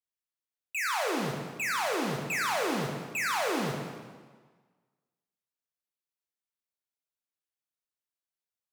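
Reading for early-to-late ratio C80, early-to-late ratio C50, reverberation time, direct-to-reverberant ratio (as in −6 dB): 4.5 dB, 2.5 dB, 1.5 s, 0.5 dB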